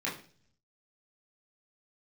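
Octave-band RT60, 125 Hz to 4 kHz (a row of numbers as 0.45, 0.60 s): 1.0, 0.70, 0.50, 0.40, 0.40, 0.55 s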